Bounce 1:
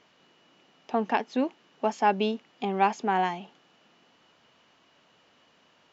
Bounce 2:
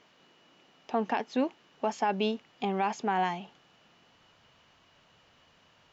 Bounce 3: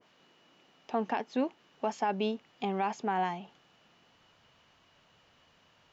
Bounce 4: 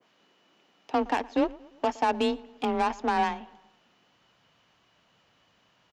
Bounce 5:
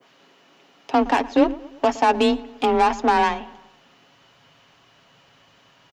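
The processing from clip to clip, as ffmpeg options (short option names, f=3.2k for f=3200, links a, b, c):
-af "asubboost=boost=5.5:cutoff=110,alimiter=limit=-17.5dB:level=0:latency=1:release=51"
-af "adynamicequalizer=threshold=0.00891:dfrequency=1600:dqfactor=0.7:tfrequency=1600:tqfactor=0.7:attack=5:release=100:ratio=0.375:range=2.5:mode=cutabove:tftype=highshelf,volume=-2dB"
-filter_complex "[0:a]aeval=exprs='0.112*(cos(1*acos(clip(val(0)/0.112,-1,1)))-cos(1*PI/2))+0.00224*(cos(5*acos(clip(val(0)/0.112,-1,1)))-cos(5*PI/2))+0.01*(cos(7*acos(clip(val(0)/0.112,-1,1)))-cos(7*PI/2))':c=same,afreqshift=25,asplit=2[a][b];[b]adelay=116,lowpass=f=3k:p=1,volume=-21.5dB,asplit=2[c][d];[d]adelay=116,lowpass=f=3k:p=1,volume=0.52,asplit=2[e][f];[f]adelay=116,lowpass=f=3k:p=1,volume=0.52,asplit=2[g][h];[h]adelay=116,lowpass=f=3k:p=1,volume=0.52[i];[a][c][e][g][i]amix=inputs=5:normalize=0,volume=5.5dB"
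-filter_complex "[0:a]aecho=1:1:7.3:0.38,bandreject=f=45.24:t=h:w=4,bandreject=f=90.48:t=h:w=4,bandreject=f=135.72:t=h:w=4,bandreject=f=180.96:t=h:w=4,bandreject=f=226.2:t=h:w=4,bandreject=f=271.44:t=h:w=4,bandreject=f=316.68:t=h:w=4,asplit=2[a][b];[b]alimiter=limit=-23.5dB:level=0:latency=1,volume=-3dB[c];[a][c]amix=inputs=2:normalize=0,volume=5dB"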